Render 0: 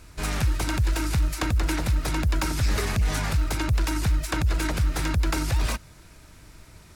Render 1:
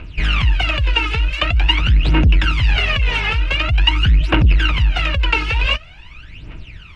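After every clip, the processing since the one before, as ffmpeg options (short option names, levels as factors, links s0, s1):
-af "aphaser=in_gain=1:out_gain=1:delay=2.4:decay=0.79:speed=0.46:type=triangular,acontrast=78,lowpass=f=2800:t=q:w=7.1,volume=0.596"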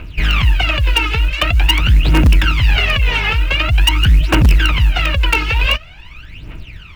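-filter_complex "[0:a]asplit=2[s0][s1];[s1]aeval=exprs='(mod(2*val(0)+1,2)-1)/2':c=same,volume=0.355[s2];[s0][s2]amix=inputs=2:normalize=0,acrusher=bits=9:mode=log:mix=0:aa=0.000001"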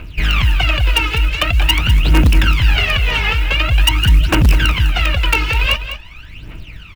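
-af "highshelf=f=6800:g=4.5,aecho=1:1:202:0.282,volume=0.891"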